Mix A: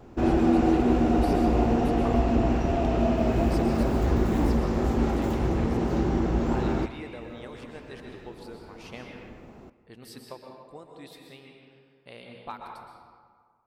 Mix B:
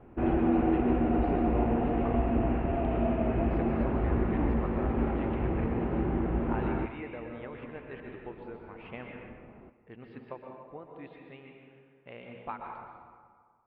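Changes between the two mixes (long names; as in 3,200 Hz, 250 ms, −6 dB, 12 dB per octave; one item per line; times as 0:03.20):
background −4.5 dB
master: add Butterworth low-pass 2,700 Hz 36 dB per octave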